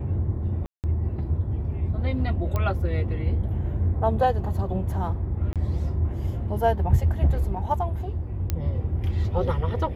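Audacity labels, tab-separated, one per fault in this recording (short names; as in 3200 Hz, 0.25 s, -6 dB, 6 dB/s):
0.660000	0.840000	gap 0.178 s
2.560000	2.560000	pop -14 dBFS
5.530000	5.560000	gap 27 ms
8.500000	8.500000	pop -12 dBFS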